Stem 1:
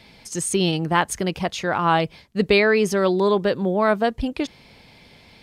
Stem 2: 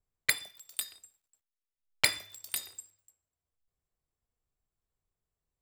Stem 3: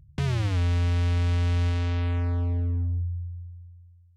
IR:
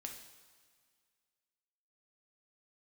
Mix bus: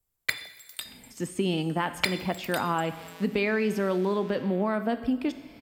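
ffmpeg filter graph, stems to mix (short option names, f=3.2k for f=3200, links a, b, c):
-filter_complex "[0:a]equalizer=f=250:t=o:w=0.33:g=11,equalizer=f=4k:t=o:w=0.33:g=-8,equalizer=f=6.3k:t=o:w=0.33:g=-8,equalizer=f=10k:t=o:w=0.33:g=-10,adelay=850,volume=-7.5dB,asplit=2[a][b];[b]volume=-3dB[c];[1:a]volume=0.5dB,asplit=2[d][e];[e]volume=-3.5dB[f];[2:a]highpass=f=350:w=0.5412,highpass=f=350:w=1.3066,adelay=2450,volume=-9.5dB[g];[a][g]amix=inputs=2:normalize=0,highshelf=f=8.8k:g=-11,alimiter=limit=-19dB:level=0:latency=1:release=330,volume=0dB[h];[3:a]atrim=start_sample=2205[i];[c][f]amix=inputs=2:normalize=0[j];[j][i]afir=irnorm=-1:irlink=0[k];[d][h][k]amix=inputs=3:normalize=0,equalizer=f=14k:t=o:w=1.1:g=14.5,acrossover=split=130|4600[l][m][n];[l]acompressor=threshold=-47dB:ratio=4[o];[m]acompressor=threshold=-22dB:ratio=4[p];[n]acompressor=threshold=-47dB:ratio=4[q];[o][p][q]amix=inputs=3:normalize=0"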